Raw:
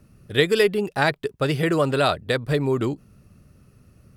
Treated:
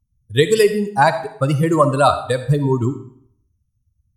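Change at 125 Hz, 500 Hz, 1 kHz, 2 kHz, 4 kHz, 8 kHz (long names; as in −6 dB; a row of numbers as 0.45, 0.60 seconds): +7.0, +4.5, +9.5, +0.5, +0.5, +8.5 decibels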